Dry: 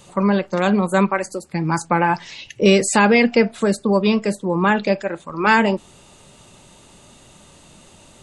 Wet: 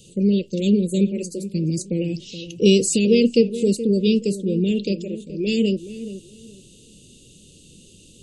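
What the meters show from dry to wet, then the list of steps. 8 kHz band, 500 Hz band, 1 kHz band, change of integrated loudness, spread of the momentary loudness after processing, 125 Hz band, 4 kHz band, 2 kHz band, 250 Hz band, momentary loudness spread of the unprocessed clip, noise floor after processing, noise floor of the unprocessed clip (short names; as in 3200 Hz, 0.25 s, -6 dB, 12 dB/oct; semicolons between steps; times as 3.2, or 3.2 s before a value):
0.0 dB, -2.0 dB, under -40 dB, -2.5 dB, 14 LU, 0.0 dB, -0.5 dB, -15.0 dB, 0.0 dB, 10 LU, -49 dBFS, -49 dBFS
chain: Chebyshev band-stop 480–2800 Hz, order 4; darkening echo 0.424 s, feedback 24%, low-pass 1400 Hz, level -12.5 dB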